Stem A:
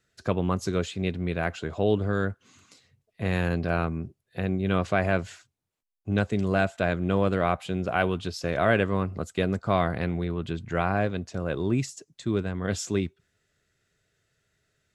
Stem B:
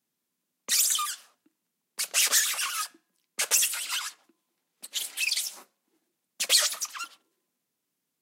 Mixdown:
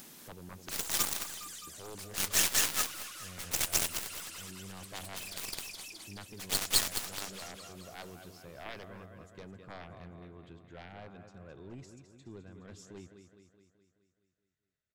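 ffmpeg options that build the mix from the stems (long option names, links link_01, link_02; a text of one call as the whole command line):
ffmpeg -i stem1.wav -i stem2.wav -filter_complex "[0:a]volume=-17dB,asplit=3[link_01][link_02][link_03];[link_01]atrim=end=1.14,asetpts=PTS-STARTPTS,afade=type=out:start_time=1.136:duration=0.004:curve=hsin[link_04];[link_02]atrim=start=1.14:end=1.67,asetpts=PTS-STARTPTS,volume=0[link_05];[link_03]atrim=start=1.67,asetpts=PTS-STARTPTS,afade=type=in:duration=0.004:curve=hsin[link_06];[link_04][link_05][link_06]concat=n=3:v=0:a=1,asplit=3[link_07][link_08][link_09];[link_08]volume=-9.5dB[link_10];[1:a]acompressor=mode=upward:threshold=-27dB:ratio=2.5,volume=2.5dB,asplit=2[link_11][link_12];[link_12]volume=-10dB[link_13];[link_09]apad=whole_len=362329[link_14];[link_11][link_14]sidechaincompress=threshold=-49dB:ratio=5:attack=11:release=994[link_15];[link_10][link_13]amix=inputs=2:normalize=0,aecho=0:1:211|422|633|844|1055|1266|1477|1688:1|0.56|0.314|0.176|0.0983|0.0551|0.0308|0.0173[link_16];[link_07][link_15][link_16]amix=inputs=3:normalize=0,aeval=exprs='0.188*(cos(1*acos(clip(val(0)/0.188,-1,1)))-cos(1*PI/2))+0.0944*(cos(2*acos(clip(val(0)/0.188,-1,1)))-cos(2*PI/2))+0.0422*(cos(5*acos(clip(val(0)/0.188,-1,1)))-cos(5*PI/2))+0.075*(cos(7*acos(clip(val(0)/0.188,-1,1)))-cos(7*PI/2))':channel_layout=same" out.wav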